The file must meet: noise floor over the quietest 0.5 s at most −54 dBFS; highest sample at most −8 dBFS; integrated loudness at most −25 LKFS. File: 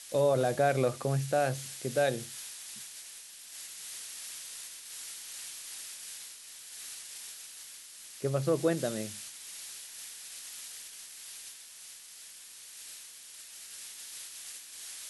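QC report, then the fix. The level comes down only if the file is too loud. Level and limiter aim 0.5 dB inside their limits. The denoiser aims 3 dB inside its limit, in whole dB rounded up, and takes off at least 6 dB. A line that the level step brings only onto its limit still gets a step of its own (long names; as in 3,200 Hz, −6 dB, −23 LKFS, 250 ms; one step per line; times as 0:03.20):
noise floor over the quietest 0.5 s −50 dBFS: out of spec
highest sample −15.5 dBFS: in spec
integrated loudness −35.5 LKFS: in spec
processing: broadband denoise 7 dB, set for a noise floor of −50 dBFS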